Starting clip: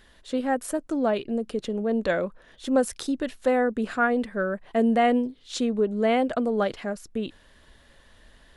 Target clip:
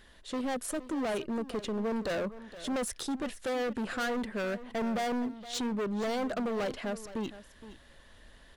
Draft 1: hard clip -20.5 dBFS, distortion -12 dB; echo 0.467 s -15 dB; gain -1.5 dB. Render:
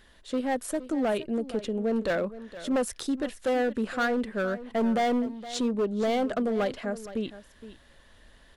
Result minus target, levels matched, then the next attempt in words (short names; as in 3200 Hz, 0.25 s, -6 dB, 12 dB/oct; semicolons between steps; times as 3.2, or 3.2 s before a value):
hard clip: distortion -6 dB
hard clip -28.5 dBFS, distortion -5 dB; echo 0.467 s -15 dB; gain -1.5 dB